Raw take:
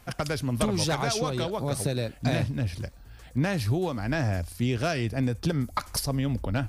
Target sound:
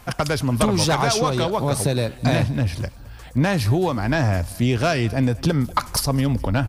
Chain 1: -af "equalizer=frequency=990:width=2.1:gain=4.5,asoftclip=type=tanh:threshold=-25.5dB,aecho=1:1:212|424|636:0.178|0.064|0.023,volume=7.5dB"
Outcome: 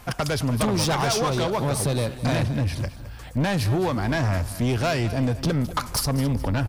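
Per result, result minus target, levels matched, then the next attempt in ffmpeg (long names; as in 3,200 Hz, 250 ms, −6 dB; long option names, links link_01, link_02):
soft clipping: distortion +13 dB; echo-to-direct +7.5 dB
-af "equalizer=frequency=990:width=2.1:gain=4.5,asoftclip=type=tanh:threshold=-15dB,aecho=1:1:212|424|636:0.178|0.064|0.023,volume=7.5dB"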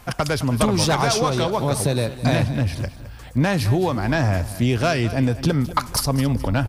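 echo-to-direct +7.5 dB
-af "equalizer=frequency=990:width=2.1:gain=4.5,asoftclip=type=tanh:threshold=-15dB,aecho=1:1:212|424:0.075|0.027,volume=7.5dB"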